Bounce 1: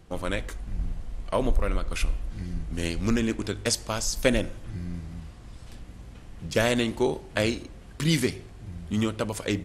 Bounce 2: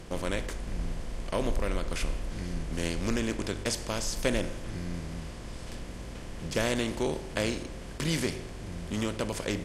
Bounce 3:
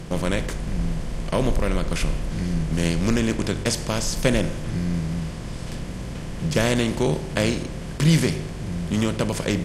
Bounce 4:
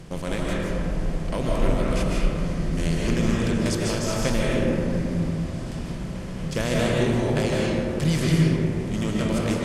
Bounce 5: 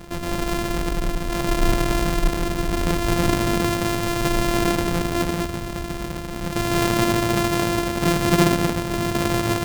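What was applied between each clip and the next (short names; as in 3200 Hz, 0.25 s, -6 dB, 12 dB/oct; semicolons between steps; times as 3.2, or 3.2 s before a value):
per-bin compression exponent 0.6; gain -8 dB
bell 150 Hz +9.5 dB 0.75 oct; gain +6.5 dB
digital reverb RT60 2.8 s, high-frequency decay 0.3×, pre-delay 0.11 s, DRR -4.5 dB; gain -6.5 dB
sample sorter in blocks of 128 samples; gain +2 dB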